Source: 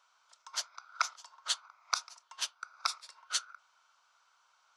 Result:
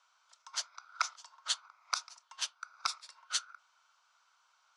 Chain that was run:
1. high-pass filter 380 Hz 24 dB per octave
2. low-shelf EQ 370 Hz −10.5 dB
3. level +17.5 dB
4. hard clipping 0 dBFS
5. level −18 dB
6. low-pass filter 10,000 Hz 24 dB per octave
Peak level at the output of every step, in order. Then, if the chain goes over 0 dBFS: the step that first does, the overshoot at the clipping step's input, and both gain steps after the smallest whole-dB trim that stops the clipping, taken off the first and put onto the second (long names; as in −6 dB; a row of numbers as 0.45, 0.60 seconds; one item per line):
−12.0, −12.0, +5.5, 0.0, −18.0, −16.0 dBFS
step 3, 5.5 dB
step 3 +11.5 dB, step 5 −12 dB